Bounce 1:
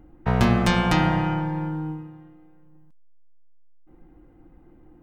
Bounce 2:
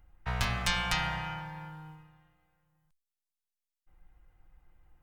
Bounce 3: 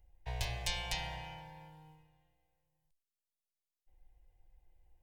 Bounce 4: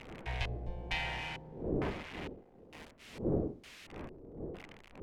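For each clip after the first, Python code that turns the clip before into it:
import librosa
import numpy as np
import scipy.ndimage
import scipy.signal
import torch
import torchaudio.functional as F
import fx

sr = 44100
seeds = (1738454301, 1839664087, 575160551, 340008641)

y1 = fx.tone_stack(x, sr, knobs='10-0-10')
y2 = fx.fixed_phaser(y1, sr, hz=540.0, stages=4)
y2 = y2 * 10.0 ** (-4.0 / 20.0)
y3 = y2 + 0.5 * 10.0 ** (-27.5 / 20.0) * np.diff(np.sign(y2), prepend=np.sign(y2[:1]))
y3 = fx.dmg_wind(y3, sr, seeds[0], corner_hz=490.0, level_db=-44.0)
y3 = fx.filter_lfo_lowpass(y3, sr, shape='square', hz=1.1, low_hz=420.0, high_hz=2300.0, q=1.7)
y3 = y3 * 10.0 ** (1.0 / 20.0)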